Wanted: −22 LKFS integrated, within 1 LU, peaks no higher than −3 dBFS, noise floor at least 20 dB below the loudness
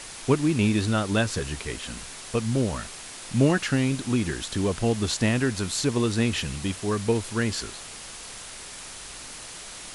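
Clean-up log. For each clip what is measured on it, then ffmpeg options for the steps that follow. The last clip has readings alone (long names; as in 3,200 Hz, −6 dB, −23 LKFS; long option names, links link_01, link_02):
background noise floor −41 dBFS; target noise floor −46 dBFS; integrated loudness −25.5 LKFS; sample peak −8.5 dBFS; target loudness −22.0 LKFS
→ -af "afftdn=noise_reduction=6:noise_floor=-41"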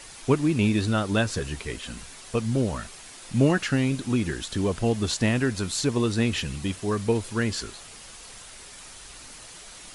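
background noise floor −45 dBFS; target noise floor −46 dBFS
→ -af "afftdn=noise_reduction=6:noise_floor=-45"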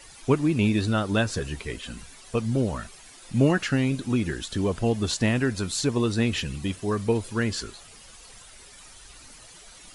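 background noise floor −49 dBFS; integrated loudness −26.0 LKFS; sample peak −8.5 dBFS; target loudness −22.0 LKFS
→ -af "volume=4dB"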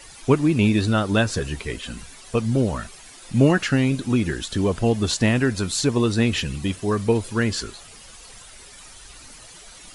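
integrated loudness −22.0 LKFS; sample peak −4.5 dBFS; background noise floor −45 dBFS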